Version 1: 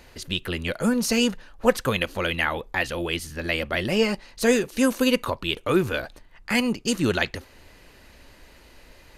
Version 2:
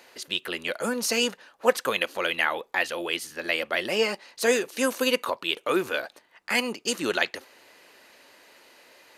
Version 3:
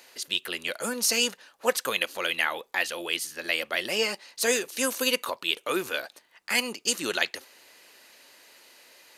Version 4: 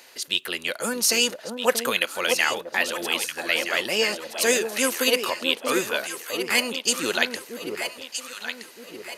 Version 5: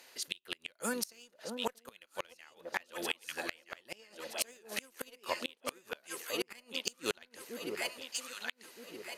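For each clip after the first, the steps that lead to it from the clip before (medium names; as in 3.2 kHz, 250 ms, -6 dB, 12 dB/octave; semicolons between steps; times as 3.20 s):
high-pass 400 Hz 12 dB/octave
treble shelf 2.9 kHz +10 dB; trim -4.5 dB
echo whose repeats swap between lows and highs 635 ms, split 960 Hz, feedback 63%, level -5 dB; trim +3.5 dB
Chebyshev shaper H 7 -24 dB, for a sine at -2.5 dBFS; inverted gate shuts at -14 dBFS, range -30 dB; trim -3 dB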